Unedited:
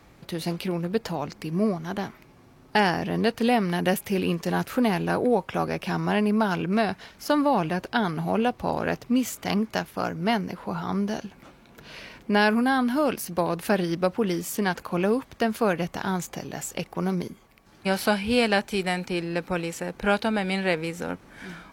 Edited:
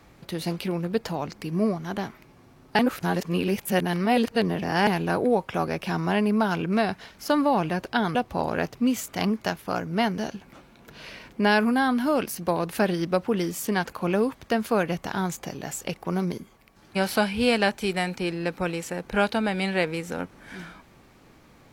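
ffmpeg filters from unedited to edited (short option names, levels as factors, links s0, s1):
-filter_complex "[0:a]asplit=5[s0][s1][s2][s3][s4];[s0]atrim=end=2.792[s5];[s1]atrim=start=2.788:end=4.872,asetpts=PTS-STARTPTS,areverse[s6];[s2]atrim=start=4.868:end=8.152[s7];[s3]atrim=start=8.438:end=10.472[s8];[s4]atrim=start=11.078[s9];[s5][s6]acrossfade=d=0.004:c1=hsin:c2=hsin[s10];[s10][s7]acrossfade=d=0.004:c1=hsin:c2=hsin[s11];[s11][s8]acrossfade=d=0.004:c1=hsin:c2=hsin[s12];[s12][s9]acrossfade=d=0.004:c1=hsin:c2=hsin"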